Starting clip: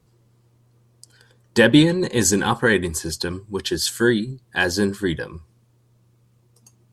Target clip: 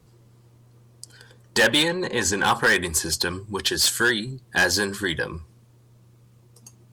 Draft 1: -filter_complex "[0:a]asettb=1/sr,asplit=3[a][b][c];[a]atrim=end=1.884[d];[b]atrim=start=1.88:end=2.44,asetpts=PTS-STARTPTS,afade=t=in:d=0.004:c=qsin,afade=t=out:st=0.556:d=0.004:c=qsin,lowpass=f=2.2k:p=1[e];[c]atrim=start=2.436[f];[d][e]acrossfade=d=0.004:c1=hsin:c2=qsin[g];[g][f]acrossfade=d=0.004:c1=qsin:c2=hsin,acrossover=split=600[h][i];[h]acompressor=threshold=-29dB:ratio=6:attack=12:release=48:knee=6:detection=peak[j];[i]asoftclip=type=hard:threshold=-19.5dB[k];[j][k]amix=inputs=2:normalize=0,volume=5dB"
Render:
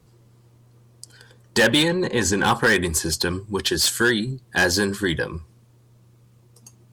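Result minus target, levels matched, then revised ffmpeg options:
compressor: peak gain reduction -6.5 dB
-filter_complex "[0:a]asettb=1/sr,asplit=3[a][b][c];[a]atrim=end=1.884[d];[b]atrim=start=1.88:end=2.44,asetpts=PTS-STARTPTS,afade=t=in:d=0.004:c=qsin,afade=t=out:st=0.556:d=0.004:c=qsin,lowpass=f=2.2k:p=1[e];[c]atrim=start=2.436[f];[d][e]acrossfade=d=0.004:c1=hsin:c2=qsin[g];[g][f]acrossfade=d=0.004:c1=qsin:c2=hsin,acrossover=split=600[h][i];[h]acompressor=threshold=-37dB:ratio=6:attack=12:release=48:knee=6:detection=peak[j];[i]asoftclip=type=hard:threshold=-19.5dB[k];[j][k]amix=inputs=2:normalize=0,volume=5dB"

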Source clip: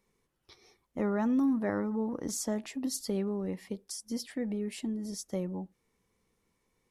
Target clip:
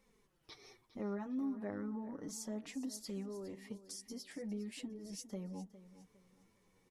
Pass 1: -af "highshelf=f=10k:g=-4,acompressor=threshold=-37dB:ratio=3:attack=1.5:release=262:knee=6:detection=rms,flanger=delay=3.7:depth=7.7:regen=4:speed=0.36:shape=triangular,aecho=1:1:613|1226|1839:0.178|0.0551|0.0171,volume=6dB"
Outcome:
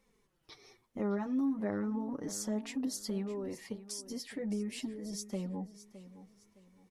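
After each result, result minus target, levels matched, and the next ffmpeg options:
echo 0.206 s late; compressor: peak gain reduction -6.5 dB
-af "highshelf=f=10k:g=-4,acompressor=threshold=-37dB:ratio=3:attack=1.5:release=262:knee=6:detection=rms,flanger=delay=3.7:depth=7.7:regen=4:speed=0.36:shape=triangular,aecho=1:1:407|814|1221:0.178|0.0551|0.0171,volume=6dB"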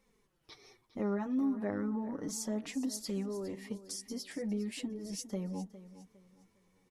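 compressor: peak gain reduction -6.5 dB
-af "highshelf=f=10k:g=-4,acompressor=threshold=-47dB:ratio=3:attack=1.5:release=262:knee=6:detection=rms,flanger=delay=3.7:depth=7.7:regen=4:speed=0.36:shape=triangular,aecho=1:1:407|814|1221:0.178|0.0551|0.0171,volume=6dB"

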